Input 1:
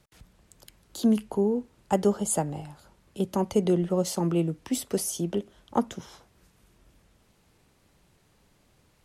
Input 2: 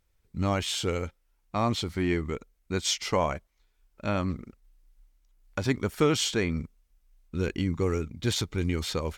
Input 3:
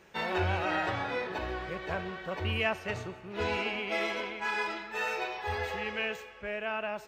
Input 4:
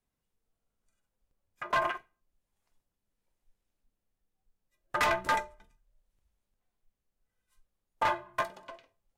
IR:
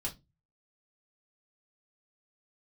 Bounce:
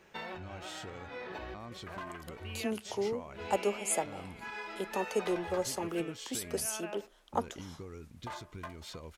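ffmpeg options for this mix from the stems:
-filter_complex "[0:a]highpass=410,adelay=1600,volume=-4dB[link_01];[1:a]acompressor=threshold=-31dB:ratio=6,volume=-10dB,asplit=2[link_02][link_03];[2:a]volume=-2.5dB[link_04];[3:a]adelay=250,volume=-10dB[link_05];[link_03]apad=whole_len=311829[link_06];[link_04][link_06]sidechaincompress=threshold=-56dB:ratio=5:attack=23:release=238[link_07];[link_02][link_07][link_05]amix=inputs=3:normalize=0,acompressor=threshold=-39dB:ratio=6,volume=0dB[link_08];[link_01][link_08]amix=inputs=2:normalize=0"

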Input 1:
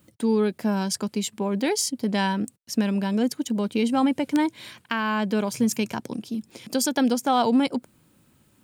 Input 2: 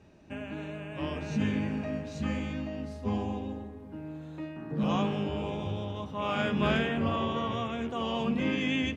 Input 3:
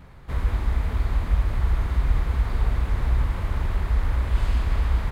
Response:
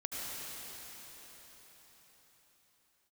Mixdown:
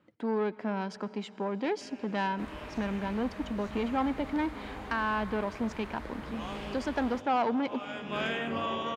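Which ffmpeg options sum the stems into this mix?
-filter_complex "[0:a]lowpass=2000,asoftclip=type=tanh:threshold=-18.5dB,volume=-1.5dB,asplit=3[link_01][link_02][link_03];[link_02]volume=-19dB[link_04];[1:a]highshelf=frequency=11000:gain=11,adelay=1500,volume=-0.5dB,asplit=2[link_05][link_06];[link_06]volume=-18dB[link_07];[2:a]adelay=2100,volume=-8dB[link_08];[link_03]apad=whole_len=461331[link_09];[link_05][link_09]sidechaincompress=threshold=-40dB:ratio=5:attack=16:release=583[link_10];[3:a]atrim=start_sample=2205[link_11];[link_04][link_07]amix=inputs=2:normalize=0[link_12];[link_12][link_11]afir=irnorm=-1:irlink=0[link_13];[link_01][link_10][link_08][link_13]amix=inputs=4:normalize=0,highpass=frequency=450:poles=1,highshelf=frequency=11000:gain=-8"

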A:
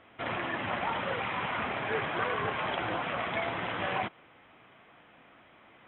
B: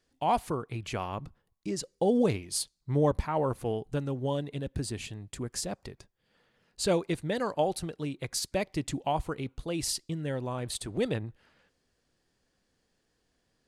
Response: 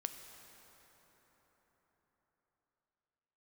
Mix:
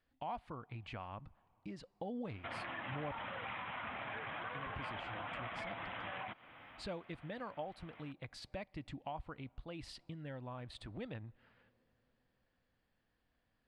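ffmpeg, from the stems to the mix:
-filter_complex "[0:a]alimiter=level_in=2.5dB:limit=-24dB:level=0:latency=1:release=184,volume=-2.5dB,adelay=2250,volume=2.5dB[link_01];[1:a]lowpass=3200,volume=-3.5dB,asplit=3[link_02][link_03][link_04];[link_02]atrim=end=3.19,asetpts=PTS-STARTPTS,afade=type=out:start_time=3.186:duration=0.004:curve=hsin[link_05];[link_03]atrim=start=3.19:end=4.53,asetpts=PTS-STARTPTS,volume=0[link_06];[link_04]atrim=start=4.53,asetpts=PTS-STARTPTS,afade=type=in:duration=0.004:curve=hsin[link_07];[link_05][link_06][link_07]concat=n=3:v=0:a=1,asplit=2[link_08][link_09];[link_09]volume=-24dB[link_10];[2:a]atrim=start_sample=2205[link_11];[link_10][link_11]afir=irnorm=-1:irlink=0[link_12];[link_01][link_08][link_12]amix=inputs=3:normalize=0,equalizer=frequency=160:width_type=o:width=0.67:gain=-4,equalizer=frequency=400:width_type=o:width=0.67:gain=-10,equalizer=frequency=6300:width_type=o:width=0.67:gain=-9,acompressor=threshold=-48dB:ratio=2"

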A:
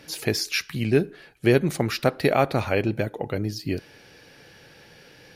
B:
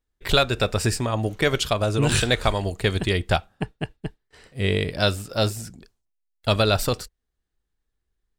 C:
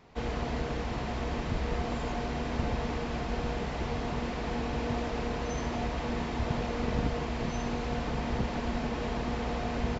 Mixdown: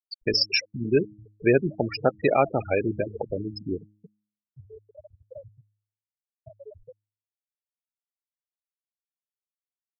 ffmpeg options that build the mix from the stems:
ffmpeg -i stem1.wav -i stem2.wav -i stem3.wav -filter_complex "[0:a]volume=0.5dB[link_01];[1:a]acompressor=threshold=-26dB:ratio=10,alimiter=limit=-21dB:level=0:latency=1:release=88,acrossover=split=88|420|1200[link_02][link_03][link_04][link_05];[link_02]acompressor=threshold=-45dB:ratio=4[link_06];[link_03]acompressor=threshold=-44dB:ratio=4[link_07];[link_04]acompressor=threshold=-40dB:ratio=4[link_08];[link_05]acompressor=threshold=-45dB:ratio=4[link_09];[link_06][link_07][link_08][link_09]amix=inputs=4:normalize=0,volume=2.5dB,asplit=2[link_10][link_11];[2:a]alimiter=level_in=3.5dB:limit=-24dB:level=0:latency=1,volume=-3.5dB,asplit=2[link_12][link_13];[link_13]adelay=2,afreqshift=-0.27[link_14];[link_12][link_14]amix=inputs=2:normalize=1,adelay=800,volume=-5.5dB[link_15];[link_11]apad=whole_len=475927[link_16];[link_15][link_16]sidechaincompress=threshold=-40dB:ratio=8:attack=16:release=614[link_17];[link_01][link_10][link_17]amix=inputs=3:normalize=0,afftfilt=real='re*gte(hypot(re,im),0.141)':imag='im*gte(hypot(re,im),0.141)':win_size=1024:overlap=0.75,bass=frequency=250:gain=-6,treble=frequency=4000:gain=12,bandreject=frequency=104.5:width_type=h:width=4,bandreject=frequency=209:width_type=h:width=4,bandreject=frequency=313.5:width_type=h:width=4" out.wav

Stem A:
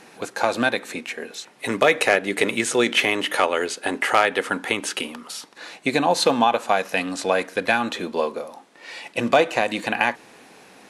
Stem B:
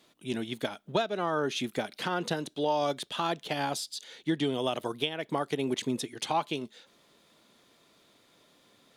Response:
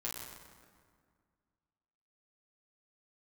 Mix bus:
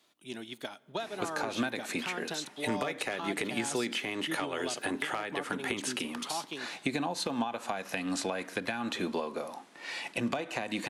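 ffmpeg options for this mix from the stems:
-filter_complex "[0:a]acompressor=threshold=-24dB:ratio=6,adelay=1000,volume=-1dB[link_01];[1:a]bass=frequency=250:gain=-9,treble=frequency=4000:gain=1,volume=-5dB,asplit=2[link_02][link_03];[link_03]volume=-22dB[link_04];[2:a]atrim=start_sample=2205[link_05];[link_04][link_05]afir=irnorm=-1:irlink=0[link_06];[link_01][link_02][link_06]amix=inputs=3:normalize=0,equalizer=frequency=490:width_type=o:width=0.51:gain=-5,acrossover=split=400[link_07][link_08];[link_08]acompressor=threshold=-33dB:ratio=3[link_09];[link_07][link_09]amix=inputs=2:normalize=0"

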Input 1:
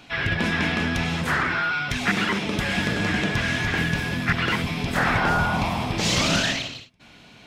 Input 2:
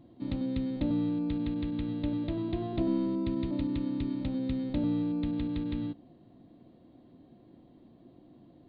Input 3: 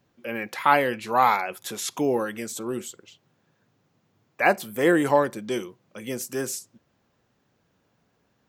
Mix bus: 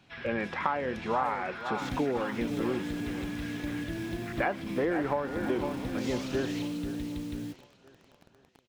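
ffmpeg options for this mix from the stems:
ffmpeg -i stem1.wav -i stem2.wav -i stem3.wav -filter_complex "[0:a]alimiter=limit=-18.5dB:level=0:latency=1,volume=-15.5dB,asplit=2[link_01][link_02];[link_02]volume=-11.5dB[link_03];[1:a]equalizer=frequency=1000:width_type=o:width=0.64:gain=-6.5,acrusher=bits=7:mix=0:aa=0.000001,adelay=1600,volume=-3.5dB[link_04];[2:a]lowpass=1800,volume=2.5dB,asplit=3[link_05][link_06][link_07];[link_06]volume=-19.5dB[link_08];[link_07]apad=whole_len=329025[link_09];[link_01][link_09]sidechaincompress=threshold=-19dB:ratio=8:attack=45:release=226[link_10];[link_04][link_05]amix=inputs=2:normalize=0,acompressor=threshold=-26dB:ratio=10,volume=0dB[link_11];[link_03][link_08]amix=inputs=2:normalize=0,aecho=0:1:497|994|1491|1988|2485|2982:1|0.46|0.212|0.0973|0.0448|0.0206[link_12];[link_10][link_11][link_12]amix=inputs=3:normalize=0" out.wav

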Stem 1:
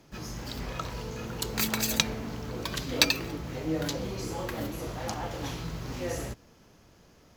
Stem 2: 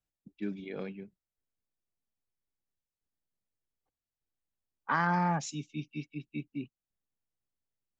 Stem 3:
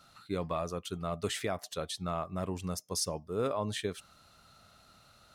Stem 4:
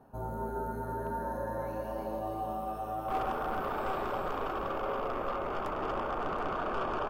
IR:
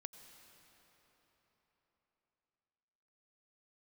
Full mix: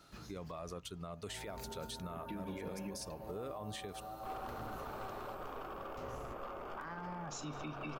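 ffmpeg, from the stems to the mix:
-filter_complex "[0:a]acrossover=split=190[link_01][link_02];[link_02]acompressor=threshold=-42dB:ratio=6[link_03];[link_01][link_03]amix=inputs=2:normalize=0,aeval=exprs='val(0)*pow(10,-23*if(lt(mod(0.67*n/s,1),2*abs(0.67)/1000),1-mod(0.67*n/s,1)/(2*abs(0.67)/1000),(mod(0.67*n/s,1)-2*abs(0.67)/1000)/(1-2*abs(0.67)/1000))/20)':channel_layout=same,volume=-15.5dB[link_04];[1:a]bandreject=frequency=138.3:width_type=h:width=4,bandreject=frequency=276.6:width_type=h:width=4,bandreject=frequency=414.9:width_type=h:width=4,bandreject=frequency=553.2:width_type=h:width=4,bandreject=frequency=691.5:width_type=h:width=4,bandreject=frequency=829.8:width_type=h:width=4,bandreject=frequency=968.1:width_type=h:width=4,bandreject=frequency=1106.4:width_type=h:width=4,bandreject=frequency=1244.7:width_type=h:width=4,bandreject=frequency=1383:width_type=h:width=4,bandreject=frequency=1521.3:width_type=h:width=4,bandreject=frequency=1659.6:width_type=h:width=4,bandreject=frequency=1797.9:width_type=h:width=4,bandreject=frequency=1936.2:width_type=h:width=4,bandreject=frequency=2074.5:width_type=h:width=4,bandreject=frequency=2212.8:width_type=h:width=4,bandreject=frequency=2351.1:width_type=h:width=4,bandreject=frequency=2489.4:width_type=h:width=4,bandreject=frequency=2627.7:width_type=h:width=4,bandreject=frequency=2766:width_type=h:width=4,bandreject=frequency=2904.3:width_type=h:width=4,bandreject=frequency=3042.6:width_type=h:width=4,bandreject=frequency=3180.9:width_type=h:width=4,bandreject=frequency=3319.2:width_type=h:width=4,bandreject=frequency=3457.5:width_type=h:width=4,bandreject=frequency=3595.8:width_type=h:width=4,bandreject=frequency=3734.1:width_type=h:width=4,bandreject=frequency=3872.4:width_type=h:width=4,bandreject=frequency=4010.7:width_type=h:width=4,bandreject=frequency=4149:width_type=h:width=4,bandreject=frequency=4287.3:width_type=h:width=4,bandreject=frequency=4425.6:width_type=h:width=4,bandreject=frequency=4563.9:width_type=h:width=4,bandreject=frequency=4702.2:width_type=h:width=4,bandreject=frequency=4840.5:width_type=h:width=4,bandreject=frequency=4978.8:width_type=h:width=4,bandreject=frequency=5117.1:width_type=h:width=4,bandreject=frequency=5255.4:width_type=h:width=4,bandreject=frequency=5393.7:width_type=h:width=4,acompressor=threshold=-39dB:ratio=6,adelay=1900,volume=1.5dB[link_05];[2:a]volume=-10.5dB[link_06];[3:a]highshelf=frequency=7900:gain=9.5,adelay=1150,volume=-11dB[link_07];[link_04][link_05][link_06]amix=inputs=3:normalize=0,acontrast=89,alimiter=level_in=6dB:limit=-24dB:level=0:latency=1:release=90,volume=-6dB,volume=0dB[link_08];[link_07][link_08]amix=inputs=2:normalize=0,alimiter=level_in=10.5dB:limit=-24dB:level=0:latency=1:release=120,volume=-10.5dB"

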